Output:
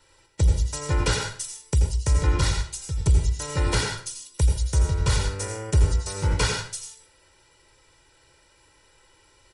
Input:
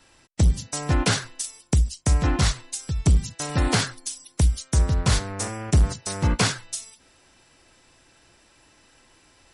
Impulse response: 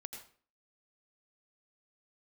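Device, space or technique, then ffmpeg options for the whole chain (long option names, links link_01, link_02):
microphone above a desk: -filter_complex "[0:a]aecho=1:1:2.1:0.75[link_01];[1:a]atrim=start_sample=2205[link_02];[link_01][link_02]afir=irnorm=-1:irlink=0"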